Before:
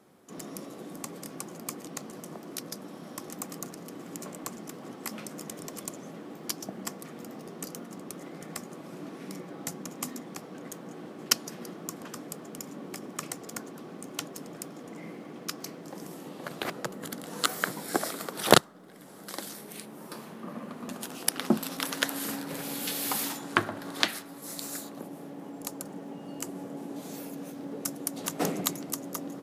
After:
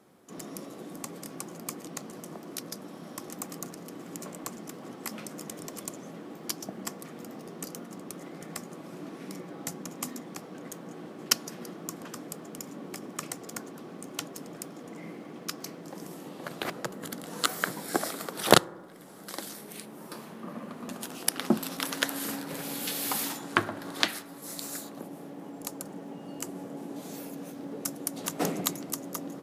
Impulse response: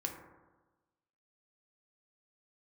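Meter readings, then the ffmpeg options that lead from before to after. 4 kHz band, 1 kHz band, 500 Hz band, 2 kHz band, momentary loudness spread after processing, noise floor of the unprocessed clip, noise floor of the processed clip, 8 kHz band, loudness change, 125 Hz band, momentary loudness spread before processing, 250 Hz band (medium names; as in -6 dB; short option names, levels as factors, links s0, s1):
0.0 dB, 0.0 dB, 0.0 dB, 0.0 dB, 14 LU, -46 dBFS, -46 dBFS, 0.0 dB, 0.0 dB, 0.0 dB, 14 LU, 0.0 dB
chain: -filter_complex "[0:a]asplit=2[s0][s1];[1:a]atrim=start_sample=2205[s2];[s1][s2]afir=irnorm=-1:irlink=0,volume=0.126[s3];[s0][s3]amix=inputs=2:normalize=0,volume=0.891"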